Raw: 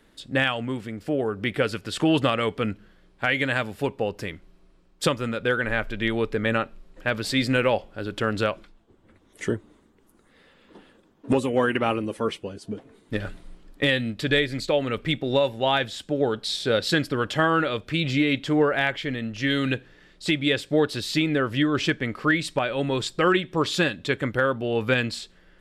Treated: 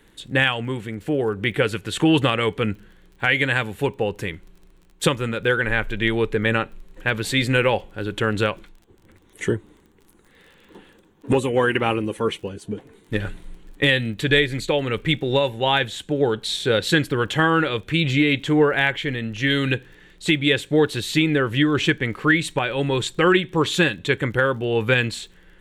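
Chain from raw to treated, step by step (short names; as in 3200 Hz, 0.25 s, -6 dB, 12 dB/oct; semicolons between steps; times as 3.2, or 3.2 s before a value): thirty-one-band EQ 250 Hz -7 dB, 630 Hz -10 dB, 1250 Hz -5 dB, 5000 Hz -12 dB; crackle 28/s -46 dBFS; gain +5.5 dB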